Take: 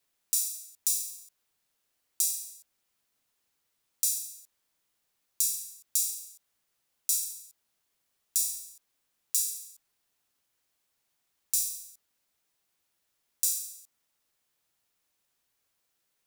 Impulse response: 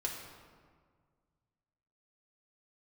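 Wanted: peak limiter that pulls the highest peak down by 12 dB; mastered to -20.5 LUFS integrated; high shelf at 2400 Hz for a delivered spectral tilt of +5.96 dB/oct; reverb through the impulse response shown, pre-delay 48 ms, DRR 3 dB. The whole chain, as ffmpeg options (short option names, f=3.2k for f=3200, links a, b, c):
-filter_complex "[0:a]highshelf=f=2.4k:g=-3.5,alimiter=limit=-19.5dB:level=0:latency=1,asplit=2[a][b];[1:a]atrim=start_sample=2205,adelay=48[c];[b][c]afir=irnorm=-1:irlink=0,volume=-5dB[d];[a][d]amix=inputs=2:normalize=0,volume=14dB"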